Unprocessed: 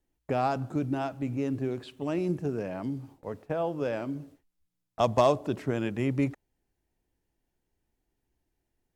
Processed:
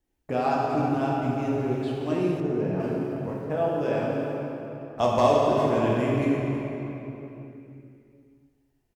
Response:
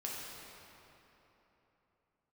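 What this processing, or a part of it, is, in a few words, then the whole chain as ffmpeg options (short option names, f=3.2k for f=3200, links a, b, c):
cave: -filter_complex "[0:a]aecho=1:1:318:0.224[a];[1:a]atrim=start_sample=2205[b];[a][b]afir=irnorm=-1:irlink=0,asettb=1/sr,asplit=3[c][d][e];[c]atrim=end=2.404[f];[d]atrim=start=2.4:end=2.8,asetpts=PTS-STARTPTS,afade=t=in:d=0.004:c=qsin,afade=t=out:st=0.396:d=0.004:c=qsin,highshelf=f=2.9k:g=-9.5[g];[e]atrim=start=2.796[h];[f][g]acrossfade=d=0.004:c1=hsin:c2=qsin[i];[i][h]acrossfade=d=0.004:c1=qsin:c2=hsin,volume=3.5dB"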